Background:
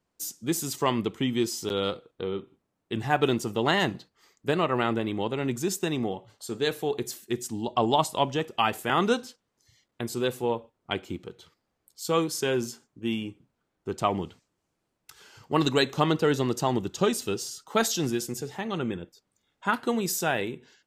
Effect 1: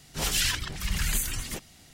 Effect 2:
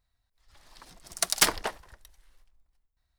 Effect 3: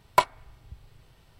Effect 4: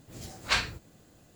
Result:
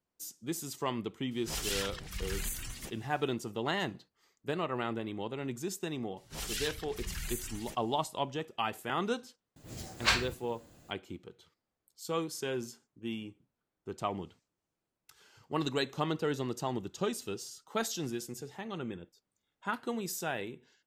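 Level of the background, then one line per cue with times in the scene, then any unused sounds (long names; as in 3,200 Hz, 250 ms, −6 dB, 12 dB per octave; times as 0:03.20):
background −9 dB
0:01.31: mix in 1 −8.5 dB + one-sided soft clipper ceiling −14.5 dBFS
0:06.16: mix in 1 −11.5 dB, fades 0.02 s
0:09.56: mix in 4 −0.5 dB
not used: 2, 3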